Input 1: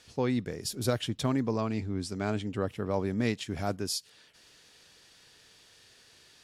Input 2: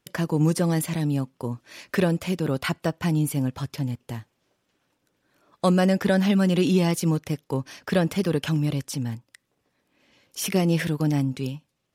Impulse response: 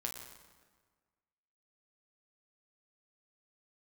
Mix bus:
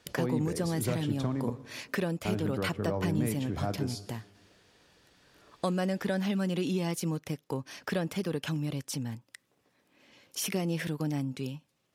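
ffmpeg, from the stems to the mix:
-filter_complex "[0:a]highshelf=f=2200:g=-12,acrossover=split=120[s0][s1];[s1]acompressor=threshold=0.0316:ratio=6[s2];[s0][s2]amix=inputs=2:normalize=0,volume=0.75,asplit=3[s3][s4][s5];[s3]atrim=end=1.5,asetpts=PTS-STARTPTS,afade=t=out:st=1.496:d=0.004:c=hsin[s6];[s4]atrim=start=1.5:end=2.25,asetpts=PTS-STARTPTS,volume=0[s7];[s5]atrim=start=2.25,asetpts=PTS-STARTPTS,afade=t=in:d=0.004:c=hsin[s8];[s6][s7][s8]concat=n=3:v=0:a=1,asplit=2[s9][s10];[s10]volume=0.631[s11];[1:a]acompressor=threshold=0.0141:ratio=2,lowshelf=f=64:g=-11,volume=1.19[s12];[2:a]atrim=start_sample=2205[s13];[s11][s13]afir=irnorm=-1:irlink=0[s14];[s9][s12][s14]amix=inputs=3:normalize=0"

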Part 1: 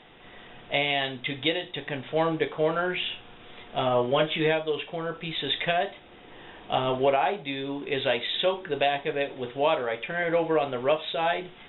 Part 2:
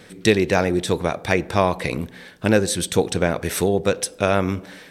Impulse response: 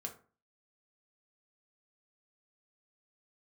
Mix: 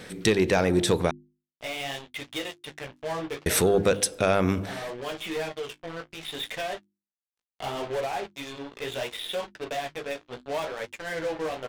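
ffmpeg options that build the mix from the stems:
-filter_complex "[0:a]asoftclip=type=tanh:threshold=0.0398,acrusher=bits=4:mix=0:aa=0.5,flanger=delay=9:depth=8.7:regen=-30:speed=0.7:shape=sinusoidal,adelay=900,volume=1.41[s0];[1:a]acontrast=55,volume=0.668,asplit=3[s1][s2][s3];[s1]atrim=end=1.11,asetpts=PTS-STARTPTS,afade=t=out:st=1.106:d=0.004:c=hsin[s4];[s2]atrim=start=1.11:end=3.46,asetpts=PTS-STARTPTS,volume=0[s5];[s3]atrim=start=3.46,asetpts=PTS-STARTPTS,afade=t=in:d=0.004:c=hsin[s6];[s4][s5][s6]concat=n=3:v=0:a=1,asplit=2[s7][s8];[s8]apad=whole_len=555053[s9];[s0][s9]sidechaincompress=threshold=0.0708:ratio=8:attack=8.4:release=891[s10];[s10][s7]amix=inputs=2:normalize=0,bandreject=f=50:t=h:w=6,bandreject=f=100:t=h:w=6,bandreject=f=150:t=h:w=6,bandreject=f=200:t=h:w=6,bandreject=f=250:t=h:w=6,bandreject=f=300:t=h:w=6,bandreject=f=350:t=h:w=6,alimiter=limit=0.266:level=0:latency=1:release=287"

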